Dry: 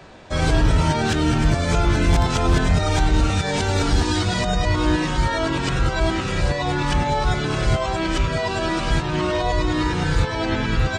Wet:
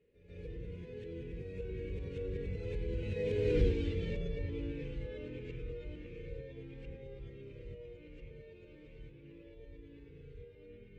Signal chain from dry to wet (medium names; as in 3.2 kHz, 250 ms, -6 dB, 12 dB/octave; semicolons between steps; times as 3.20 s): Doppler pass-by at 3.63 s, 28 m/s, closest 2.3 m; FFT filter 120 Hz 0 dB, 310 Hz -3 dB, 480 Hz +13 dB, 690 Hz -24 dB, 1.3 kHz -22 dB, 2.3 kHz 0 dB, 5 kHz -18 dB; pre-echo 142 ms -13 dB; on a send at -15 dB: reverberation RT60 1.1 s, pre-delay 4 ms; on the sum: compression 2:1, threshold -41 dBFS, peak gain reduction 15 dB; treble shelf 8.4 kHz -10 dB; trim +4.5 dB